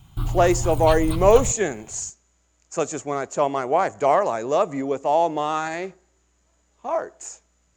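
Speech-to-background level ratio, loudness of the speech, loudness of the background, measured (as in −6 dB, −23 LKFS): 6.5 dB, −22.0 LKFS, −28.5 LKFS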